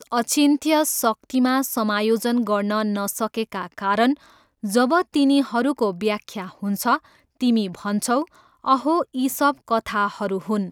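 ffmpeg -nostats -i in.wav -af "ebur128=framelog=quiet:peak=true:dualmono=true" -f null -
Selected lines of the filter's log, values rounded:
Integrated loudness:
  I:         -18.6 LUFS
  Threshold: -28.8 LUFS
Loudness range:
  LRA:         2.4 LU
  Threshold: -39.1 LUFS
  LRA low:   -20.3 LUFS
  LRA high:  -17.9 LUFS
True peak:
  Peak:       -5.0 dBFS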